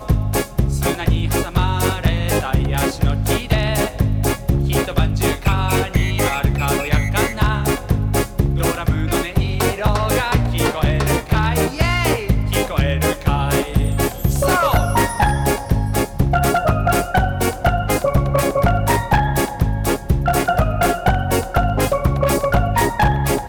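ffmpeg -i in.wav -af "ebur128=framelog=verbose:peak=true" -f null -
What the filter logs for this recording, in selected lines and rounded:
Integrated loudness:
  I:         -18.4 LUFS
  Threshold: -28.4 LUFS
Loudness range:
  LRA:         1.3 LU
  Threshold: -38.4 LUFS
  LRA low:   -19.0 LUFS
  LRA high:  -17.7 LUFS
True peak:
  Peak:       -4.2 dBFS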